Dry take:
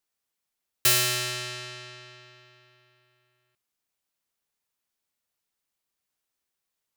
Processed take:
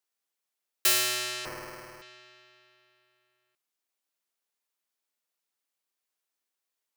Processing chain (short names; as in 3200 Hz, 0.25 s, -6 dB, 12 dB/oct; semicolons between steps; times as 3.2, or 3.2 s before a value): HPF 280 Hz 12 dB/oct; 1.45–2.02 sample-rate reducer 3600 Hz, jitter 0%; gain -2.5 dB